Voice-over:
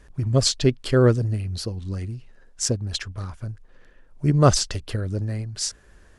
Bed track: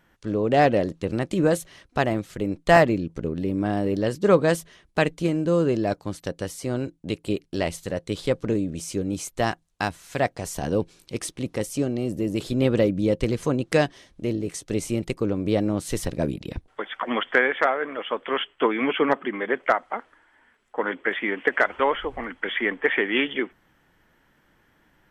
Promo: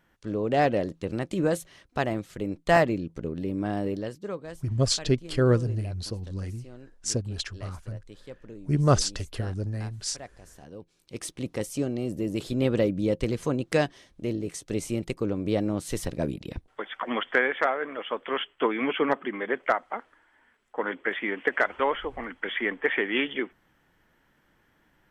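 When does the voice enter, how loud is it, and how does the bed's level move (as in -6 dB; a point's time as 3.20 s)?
4.45 s, -4.5 dB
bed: 3.88 s -4.5 dB
4.41 s -20 dB
10.79 s -20 dB
11.27 s -3.5 dB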